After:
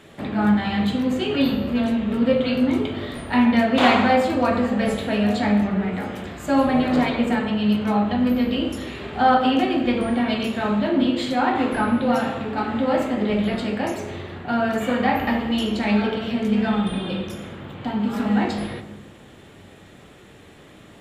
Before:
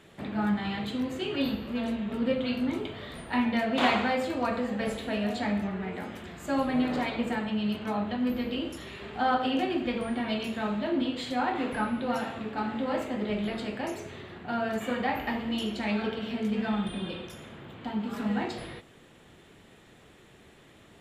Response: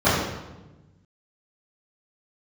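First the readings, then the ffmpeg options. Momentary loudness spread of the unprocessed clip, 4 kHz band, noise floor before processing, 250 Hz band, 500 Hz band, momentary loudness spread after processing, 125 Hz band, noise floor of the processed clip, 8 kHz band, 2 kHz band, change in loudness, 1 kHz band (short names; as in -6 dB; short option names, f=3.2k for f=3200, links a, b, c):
10 LU, +7.0 dB, -55 dBFS, +9.5 dB, +9.0 dB, 10 LU, +10.0 dB, -47 dBFS, n/a, +7.5 dB, +9.0 dB, +9.0 dB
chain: -filter_complex "[0:a]asplit=2[a][b];[1:a]atrim=start_sample=2205[c];[b][c]afir=irnorm=-1:irlink=0,volume=-28dB[d];[a][d]amix=inputs=2:normalize=0,volume=6.5dB"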